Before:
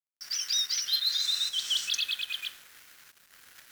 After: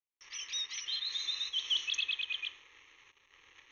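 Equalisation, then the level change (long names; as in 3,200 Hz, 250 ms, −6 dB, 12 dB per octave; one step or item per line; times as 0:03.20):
linear-phase brick-wall low-pass 6,700 Hz
phaser with its sweep stopped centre 1,000 Hz, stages 8
0.0 dB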